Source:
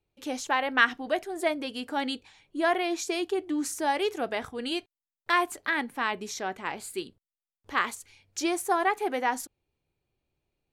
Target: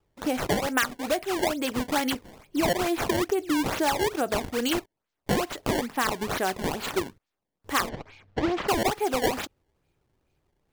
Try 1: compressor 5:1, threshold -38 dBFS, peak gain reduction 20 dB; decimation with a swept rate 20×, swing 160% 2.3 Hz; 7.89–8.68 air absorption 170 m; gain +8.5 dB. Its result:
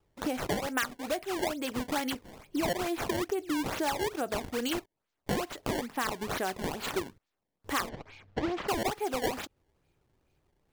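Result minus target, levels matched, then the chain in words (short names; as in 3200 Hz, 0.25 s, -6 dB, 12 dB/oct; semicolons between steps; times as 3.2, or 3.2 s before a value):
compressor: peak gain reduction +6 dB
compressor 5:1, threshold -30.5 dBFS, peak gain reduction 14 dB; decimation with a swept rate 20×, swing 160% 2.3 Hz; 7.89–8.68 air absorption 170 m; gain +8.5 dB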